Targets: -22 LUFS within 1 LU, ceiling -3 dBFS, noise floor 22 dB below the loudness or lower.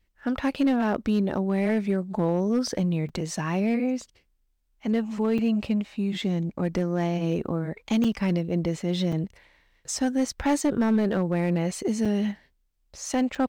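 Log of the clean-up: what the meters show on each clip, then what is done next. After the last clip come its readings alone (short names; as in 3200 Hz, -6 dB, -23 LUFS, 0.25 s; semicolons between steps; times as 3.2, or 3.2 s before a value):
clipped 1.1%; flat tops at -16.5 dBFS; dropouts 6; longest dropout 5.4 ms; loudness -26.5 LUFS; peak -16.5 dBFS; loudness target -22.0 LUFS
-> clip repair -16.5 dBFS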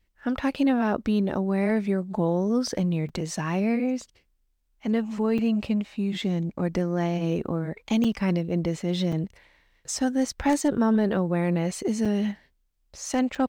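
clipped 0.0%; dropouts 6; longest dropout 5.4 ms
-> interpolate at 3.09/5.38/8.04/9.12/12.05/13.35, 5.4 ms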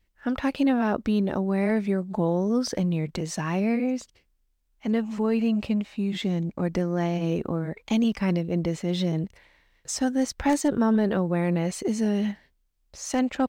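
dropouts 0; loudness -26.0 LUFS; peak -11.0 dBFS; loudness target -22.0 LUFS
-> gain +4 dB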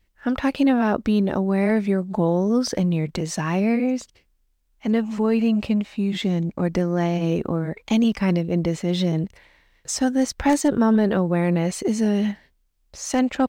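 loudness -22.0 LUFS; peak -7.0 dBFS; noise floor -66 dBFS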